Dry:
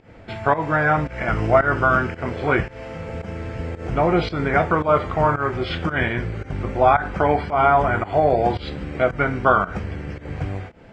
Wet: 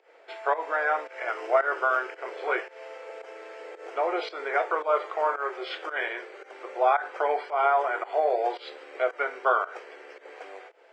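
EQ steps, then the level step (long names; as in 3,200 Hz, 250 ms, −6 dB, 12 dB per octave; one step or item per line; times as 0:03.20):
Butterworth high-pass 390 Hz 48 dB per octave
−6.5 dB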